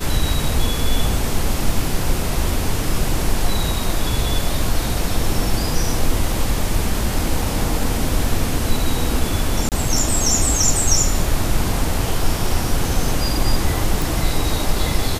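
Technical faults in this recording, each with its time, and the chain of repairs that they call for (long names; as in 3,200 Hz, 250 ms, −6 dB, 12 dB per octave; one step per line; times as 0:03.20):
0:09.69–0:09.72: drop-out 28 ms
0:14.02: click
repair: click removal
repair the gap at 0:09.69, 28 ms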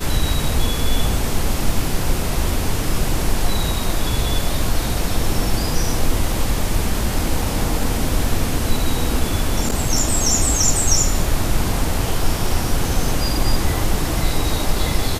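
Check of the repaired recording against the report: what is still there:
none of them is left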